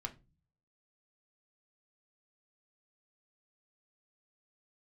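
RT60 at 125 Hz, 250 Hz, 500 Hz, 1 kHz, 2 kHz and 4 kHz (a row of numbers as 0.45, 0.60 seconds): 0.80, 0.65, 0.35, 0.25, 0.20, 0.20 seconds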